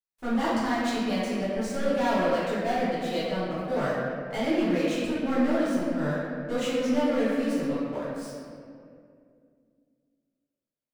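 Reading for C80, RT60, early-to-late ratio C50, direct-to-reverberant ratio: 0.0 dB, 2.4 s, −2.5 dB, −12.0 dB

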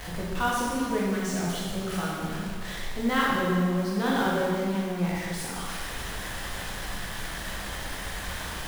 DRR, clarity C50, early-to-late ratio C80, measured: −5.5 dB, −1.5 dB, 0.5 dB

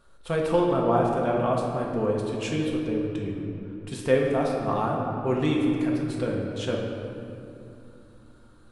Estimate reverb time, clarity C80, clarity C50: 2.8 s, 3.0 dB, 1.5 dB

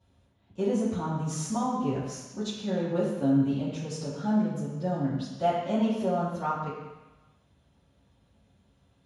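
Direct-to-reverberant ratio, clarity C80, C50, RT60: −12.0 dB, 3.5 dB, 1.0 dB, 1.1 s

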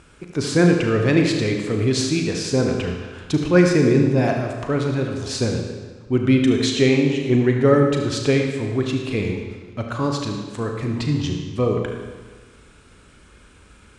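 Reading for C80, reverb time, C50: 5.0 dB, 1.4 s, 3.5 dB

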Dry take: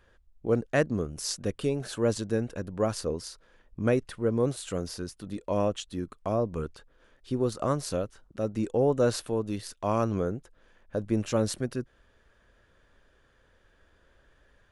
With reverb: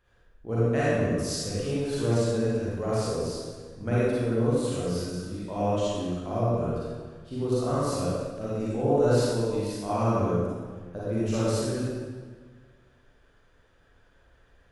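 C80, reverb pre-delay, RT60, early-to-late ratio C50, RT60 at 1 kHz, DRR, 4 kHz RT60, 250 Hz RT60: −2.5 dB, 36 ms, 1.5 s, −6.0 dB, 1.5 s, −10.0 dB, 1.2 s, 1.7 s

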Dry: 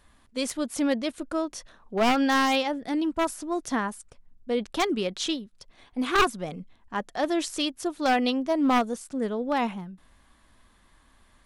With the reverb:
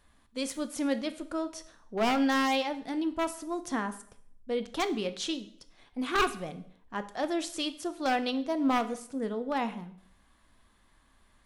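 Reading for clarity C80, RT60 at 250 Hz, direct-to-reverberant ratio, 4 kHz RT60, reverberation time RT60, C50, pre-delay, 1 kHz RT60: 18.0 dB, 0.65 s, 10.5 dB, 0.60 s, 0.60 s, 14.5 dB, 13 ms, 0.60 s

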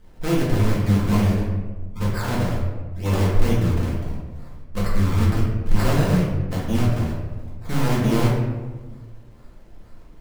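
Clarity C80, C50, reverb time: 4.0 dB, 1.0 dB, 1.4 s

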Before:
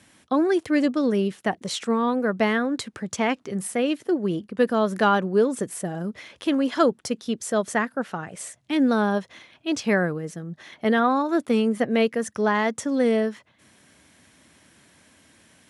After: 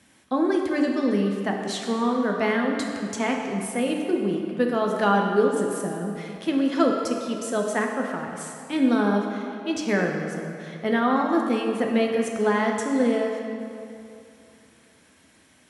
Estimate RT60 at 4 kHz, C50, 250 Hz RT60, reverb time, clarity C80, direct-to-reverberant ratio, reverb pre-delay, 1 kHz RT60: 1.8 s, 2.5 dB, 2.4 s, 2.6 s, 4.0 dB, 0.5 dB, 3 ms, 2.7 s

